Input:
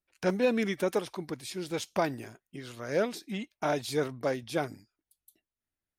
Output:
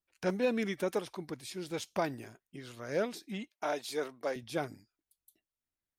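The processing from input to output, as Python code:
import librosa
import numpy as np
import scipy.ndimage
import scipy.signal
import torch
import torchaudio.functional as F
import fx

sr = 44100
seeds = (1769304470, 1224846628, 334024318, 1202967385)

y = fx.highpass(x, sr, hz=350.0, slope=12, at=(3.5, 4.36))
y = y * librosa.db_to_amplitude(-4.0)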